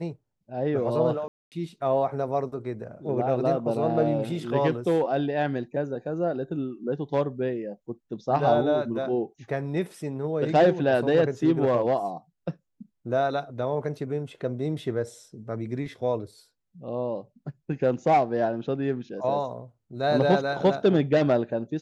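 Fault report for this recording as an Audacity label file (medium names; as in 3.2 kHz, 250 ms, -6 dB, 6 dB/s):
1.280000	1.520000	dropout 238 ms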